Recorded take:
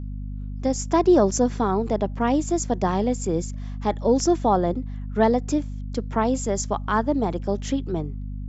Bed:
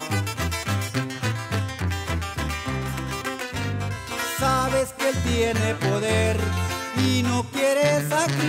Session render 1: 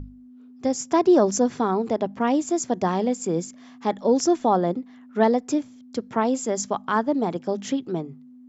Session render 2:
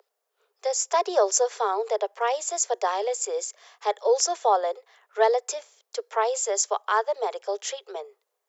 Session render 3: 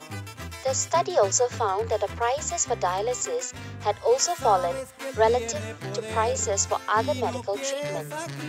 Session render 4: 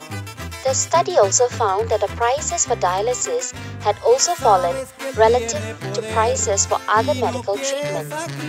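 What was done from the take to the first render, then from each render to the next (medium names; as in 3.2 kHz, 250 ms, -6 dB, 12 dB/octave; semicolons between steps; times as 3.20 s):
hum notches 50/100/150/200 Hz
steep high-pass 410 Hz 96 dB/octave; treble shelf 4.5 kHz +8 dB
add bed -11.5 dB
trim +6.5 dB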